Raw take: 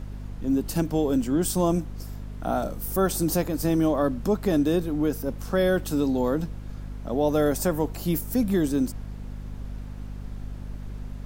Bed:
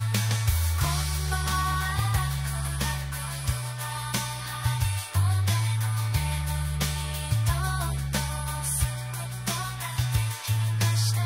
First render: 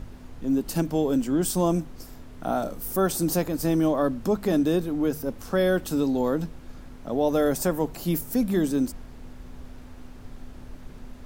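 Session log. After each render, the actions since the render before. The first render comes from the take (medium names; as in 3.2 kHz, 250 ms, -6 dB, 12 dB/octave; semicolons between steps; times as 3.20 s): de-hum 50 Hz, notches 4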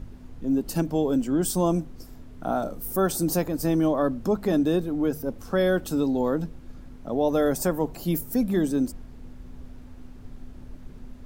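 noise reduction 6 dB, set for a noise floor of -44 dBFS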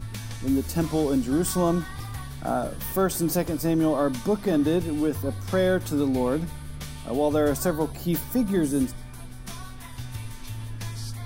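add bed -10.5 dB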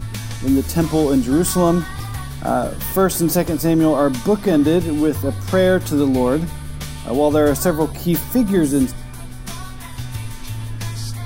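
trim +7.5 dB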